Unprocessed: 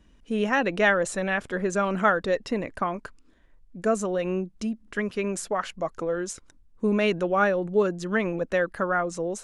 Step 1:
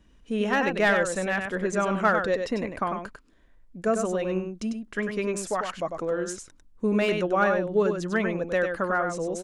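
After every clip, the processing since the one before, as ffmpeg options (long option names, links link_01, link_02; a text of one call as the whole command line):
ffmpeg -i in.wav -filter_complex "[0:a]aecho=1:1:98:0.501,acrossover=split=1500[link_01][link_02];[link_02]aeval=exprs='clip(val(0),-1,0.0562)':channel_layout=same[link_03];[link_01][link_03]amix=inputs=2:normalize=0,volume=-1dB" out.wav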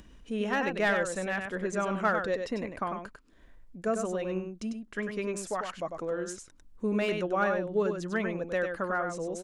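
ffmpeg -i in.wav -af "acompressor=mode=upward:threshold=-38dB:ratio=2.5,volume=-5dB" out.wav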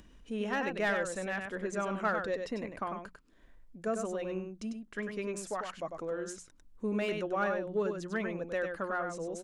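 ffmpeg -i in.wav -filter_complex "[0:a]bandreject=frequency=60:width_type=h:width=6,bandreject=frequency=120:width_type=h:width=6,bandreject=frequency=180:width_type=h:width=6,asplit=2[link_01][link_02];[link_02]asoftclip=type=tanh:threshold=-24dB,volume=-11dB[link_03];[link_01][link_03]amix=inputs=2:normalize=0,volume=-5.5dB" out.wav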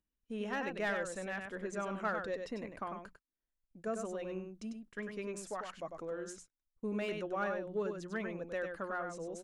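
ffmpeg -i in.wav -af "agate=range=-29dB:threshold=-50dB:ratio=16:detection=peak,volume=-4.5dB" out.wav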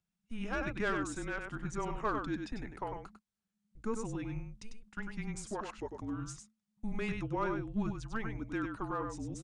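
ffmpeg -i in.wav -af "aresample=22050,aresample=44100,afreqshift=-220,volume=2dB" out.wav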